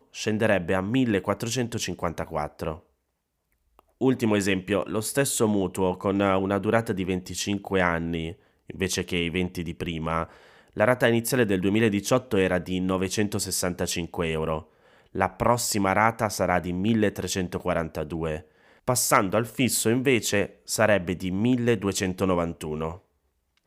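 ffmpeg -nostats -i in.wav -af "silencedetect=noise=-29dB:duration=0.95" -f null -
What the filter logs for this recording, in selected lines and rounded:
silence_start: 2.74
silence_end: 4.01 | silence_duration: 1.27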